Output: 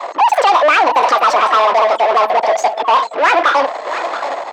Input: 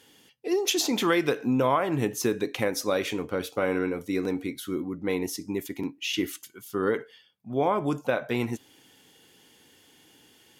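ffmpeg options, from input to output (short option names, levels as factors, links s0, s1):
-filter_complex "[0:a]aeval=exprs='val(0)+0.5*0.0422*sgn(val(0))':c=same,asetrate=103194,aresample=44100,tiltshelf=f=970:g=5,asplit=2[s0][s1];[s1]highpass=f=720:p=1,volume=8.91,asoftclip=type=tanh:threshold=0.316[s2];[s0][s2]amix=inputs=2:normalize=0,lowpass=f=2200:p=1,volume=0.501,highpass=67,aecho=1:1:678:0.266,anlmdn=251,acrossover=split=580[s3][s4];[s3]bandreject=f=108.2:t=h:w=4,bandreject=f=216.4:t=h:w=4,bandreject=f=324.6:t=h:w=4,bandreject=f=432.8:t=h:w=4,bandreject=f=541:t=h:w=4,bandreject=f=649.2:t=h:w=4,bandreject=f=757.4:t=h:w=4,bandreject=f=865.6:t=h:w=4,bandreject=f=973.8:t=h:w=4,bandreject=f=1082:t=h:w=4,bandreject=f=1190.2:t=h:w=4,bandreject=f=1298.4:t=h:w=4,bandreject=f=1406.6:t=h:w=4,bandreject=f=1514.8:t=h:w=4,bandreject=f=1623:t=h:w=4,bandreject=f=1731.2:t=h:w=4,bandreject=f=1839.4:t=h:w=4,bandreject=f=1947.6:t=h:w=4,bandreject=f=2055.8:t=h:w=4,bandreject=f=2164:t=h:w=4,bandreject=f=2272.2:t=h:w=4,bandreject=f=2380.4:t=h:w=4,bandreject=f=2488.6:t=h:w=4,bandreject=f=2596.8:t=h:w=4,bandreject=f=2705:t=h:w=4,bandreject=f=2813.2:t=h:w=4,bandreject=f=2921.4:t=h:w=4[s5];[s4]acontrast=81[s6];[s5][s6]amix=inputs=2:normalize=0,acrossover=split=330 6200:gain=0.251 1 0.251[s7][s8][s9];[s7][s8][s9]amix=inputs=3:normalize=0,volume=1.26"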